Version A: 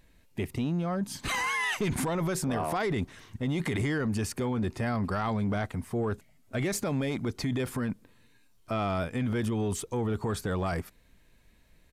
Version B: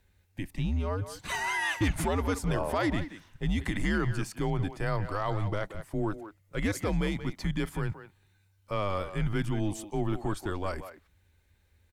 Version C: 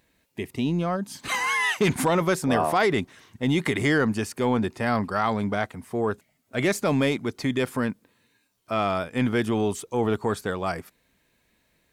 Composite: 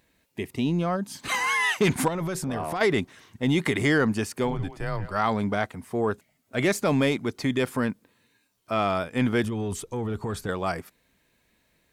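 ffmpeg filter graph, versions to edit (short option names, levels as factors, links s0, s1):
-filter_complex "[0:a]asplit=2[s0][s1];[2:a]asplit=4[s2][s3][s4][s5];[s2]atrim=end=2.082[s6];[s0]atrim=start=2.078:end=2.812[s7];[s3]atrim=start=2.808:end=4.58[s8];[1:a]atrim=start=4.42:end=5.2[s9];[s4]atrim=start=5.04:end=9.442[s10];[s1]atrim=start=9.438:end=10.492[s11];[s5]atrim=start=10.488[s12];[s6][s7]acrossfade=d=0.004:c1=hsin:c2=hsin[s13];[s13][s8]acrossfade=d=0.004:c1=hsin:c2=hsin[s14];[s14][s9]acrossfade=d=0.16:c1=tri:c2=tri[s15];[s15][s10]acrossfade=d=0.16:c1=tri:c2=tri[s16];[s16][s11]acrossfade=d=0.004:c1=hsin:c2=hsin[s17];[s17][s12]acrossfade=d=0.004:c1=hsin:c2=hsin"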